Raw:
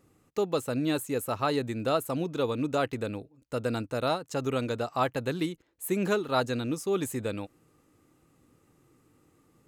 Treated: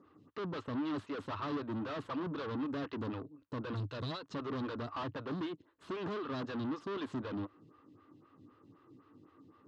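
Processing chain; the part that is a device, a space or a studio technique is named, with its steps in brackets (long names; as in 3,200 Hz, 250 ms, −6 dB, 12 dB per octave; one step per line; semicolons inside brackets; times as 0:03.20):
0:03.73–0:04.23: graphic EQ with 10 bands 125 Hz +10 dB, 250 Hz −8 dB, 1,000 Hz −11 dB, 4,000 Hz +7 dB, 8,000 Hz +8 dB
vibe pedal into a guitar amplifier (phaser with staggered stages 3.9 Hz; tube saturation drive 43 dB, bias 0.45; loudspeaker in its box 95–4,100 Hz, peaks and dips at 100 Hz +7 dB, 280 Hz +5 dB, 510 Hz −5 dB, 750 Hz −6 dB, 1,100 Hz +6 dB, 2,300 Hz −8 dB)
level +6.5 dB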